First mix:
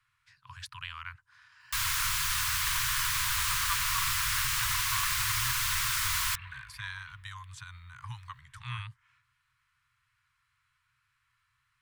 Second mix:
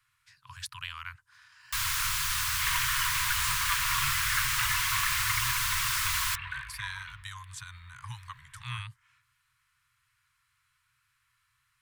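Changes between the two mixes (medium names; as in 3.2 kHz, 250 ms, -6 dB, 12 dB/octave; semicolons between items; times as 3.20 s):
speech: remove low-pass 3.4 kHz 6 dB/octave; second sound +8.5 dB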